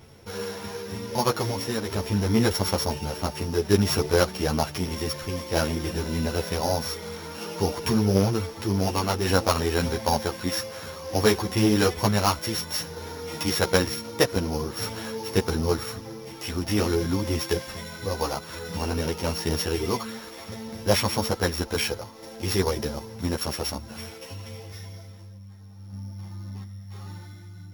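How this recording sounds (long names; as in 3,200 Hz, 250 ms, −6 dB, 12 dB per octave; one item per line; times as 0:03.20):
a buzz of ramps at a fixed pitch in blocks of 8 samples
tremolo saw down 0.54 Hz, depth 35%
a shimmering, thickened sound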